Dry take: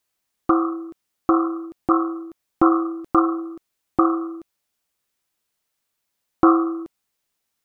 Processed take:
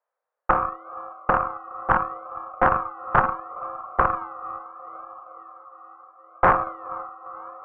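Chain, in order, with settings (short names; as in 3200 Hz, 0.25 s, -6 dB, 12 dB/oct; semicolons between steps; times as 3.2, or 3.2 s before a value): diffused feedback echo 0.477 s, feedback 65%, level -15 dB; in parallel at -10 dB: decimation with a swept rate 31×, swing 60% 0.73 Hz; on the sum: elliptic high-pass 500 Hz, stop band 50 dB; tube stage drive 15 dB, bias 0.7; LPF 1400 Hz 24 dB/oct; Doppler distortion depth 0.51 ms; gain +7.5 dB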